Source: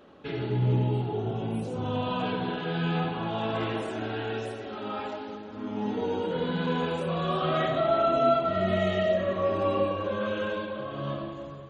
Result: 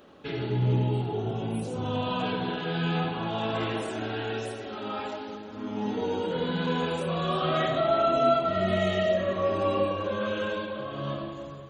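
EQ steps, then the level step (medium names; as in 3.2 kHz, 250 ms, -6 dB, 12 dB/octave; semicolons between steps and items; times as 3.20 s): treble shelf 5.1 kHz +9 dB; 0.0 dB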